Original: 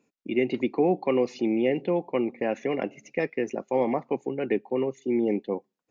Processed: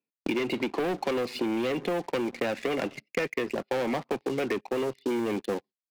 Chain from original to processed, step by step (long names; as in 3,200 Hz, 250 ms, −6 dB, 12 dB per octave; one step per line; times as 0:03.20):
downsampling to 11,025 Hz
noise gate −46 dBFS, range −31 dB
leveller curve on the samples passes 3
downward compressor 3 to 1, threshold −20 dBFS, peak gain reduction 4.5 dB
high-shelf EQ 2,100 Hz +9 dB
multiband upward and downward compressor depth 70%
level −7.5 dB